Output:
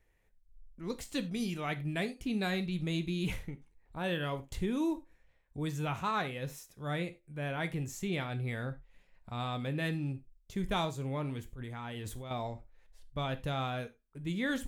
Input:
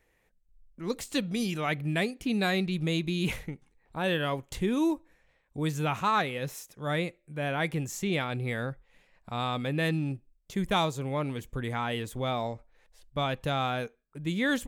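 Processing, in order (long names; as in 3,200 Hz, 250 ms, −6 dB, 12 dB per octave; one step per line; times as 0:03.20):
low-shelf EQ 110 Hz +11 dB
0:11.50–0:12.31: compressor whose output falls as the input rises −35 dBFS, ratio −1
reverb whose tail is shaped and stops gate 120 ms falling, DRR 9 dB
level −7 dB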